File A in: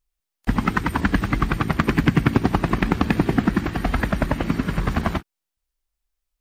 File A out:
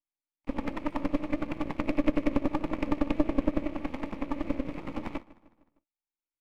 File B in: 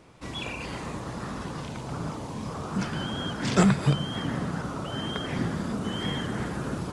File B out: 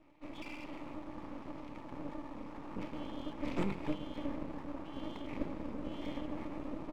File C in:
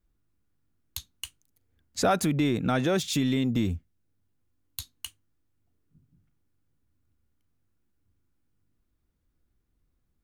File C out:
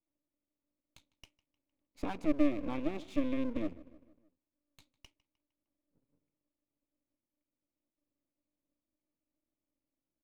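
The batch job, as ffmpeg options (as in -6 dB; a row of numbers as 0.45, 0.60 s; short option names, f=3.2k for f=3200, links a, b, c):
-filter_complex "[0:a]asplit=3[a][b][c];[a]bandpass=f=300:t=q:w=8,volume=0dB[d];[b]bandpass=f=870:t=q:w=8,volume=-6dB[e];[c]bandpass=f=2.24k:t=q:w=8,volume=-9dB[f];[d][e][f]amix=inputs=3:normalize=0,asplit=2[g][h];[h]adelay=153,lowpass=f=2.9k:p=1,volume=-19dB,asplit=2[i][j];[j]adelay=153,lowpass=f=2.9k:p=1,volume=0.53,asplit=2[k][l];[l]adelay=153,lowpass=f=2.9k:p=1,volume=0.53,asplit=2[m][n];[n]adelay=153,lowpass=f=2.9k:p=1,volume=0.53[o];[g][i][k][m][o]amix=inputs=5:normalize=0,aeval=exprs='max(val(0),0)':c=same,volume=4.5dB"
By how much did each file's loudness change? -10.0, -13.0, -8.5 LU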